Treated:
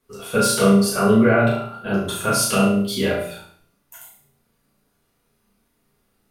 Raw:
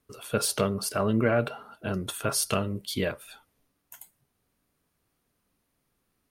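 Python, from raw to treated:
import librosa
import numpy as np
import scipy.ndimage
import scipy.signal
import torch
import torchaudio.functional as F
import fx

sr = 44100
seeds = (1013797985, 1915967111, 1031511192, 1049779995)

y = fx.low_shelf(x, sr, hz=92.0, db=-7.5)
y = fx.room_flutter(y, sr, wall_m=6.0, rt60_s=0.51)
y = fx.room_shoebox(y, sr, seeds[0], volume_m3=32.0, walls='mixed', distance_m=1.0)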